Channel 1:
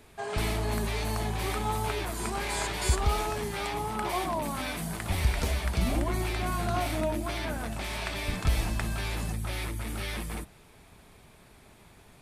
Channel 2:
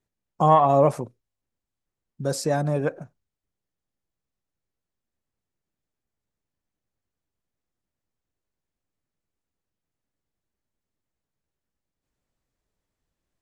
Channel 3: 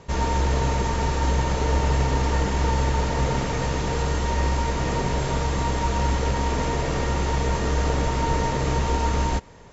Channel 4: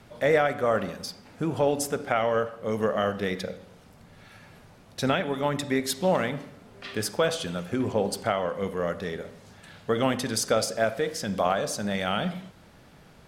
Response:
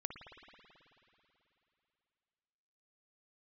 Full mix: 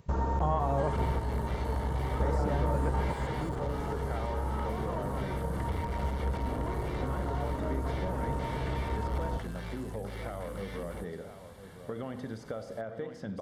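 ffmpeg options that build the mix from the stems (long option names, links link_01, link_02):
-filter_complex "[0:a]asoftclip=type=tanh:threshold=-32dB,adelay=600,volume=-0.5dB[link_01];[1:a]acrusher=bits=10:mix=0:aa=0.000001,volume=-3dB,asplit=2[link_02][link_03];[2:a]afwtdn=0.0355,volume=0.5dB[link_04];[3:a]lowpass=frequency=1000:poles=1,alimiter=limit=-18dB:level=0:latency=1:release=105,adelay=2000,volume=-5dB,asplit=2[link_05][link_06];[link_06]volume=-15.5dB[link_07];[link_03]apad=whole_len=428920[link_08];[link_04][link_08]sidechaingate=range=-11dB:threshold=-49dB:ratio=16:detection=peak[link_09];[link_02][link_09]amix=inputs=2:normalize=0,acompressor=threshold=-29dB:ratio=3,volume=0dB[link_10];[link_01][link_05]amix=inputs=2:normalize=0,asuperstop=centerf=2500:order=4:qfactor=7.7,acompressor=threshold=-34dB:ratio=6,volume=0dB[link_11];[link_07]aecho=0:1:1003:1[link_12];[link_10][link_11][link_12]amix=inputs=3:normalize=0,lowshelf=frequency=150:gain=-9,acrossover=split=2700[link_13][link_14];[link_14]acompressor=threshold=-55dB:ratio=4:attack=1:release=60[link_15];[link_13][link_15]amix=inputs=2:normalize=0,equalizer=frequency=79:width_type=o:width=2.2:gain=9"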